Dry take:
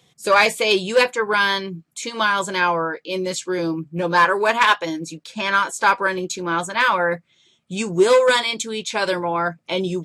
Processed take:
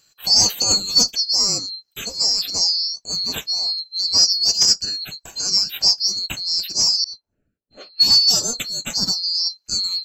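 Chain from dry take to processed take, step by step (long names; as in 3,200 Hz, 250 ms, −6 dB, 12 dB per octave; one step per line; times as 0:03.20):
neighbouring bands swapped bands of 4,000 Hz
0:07.04–0:08.30: low-pass that shuts in the quiet parts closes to 460 Hz, open at −10.5 dBFS
dynamic equaliser 190 Hz, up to +5 dB, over −50 dBFS, Q 1.5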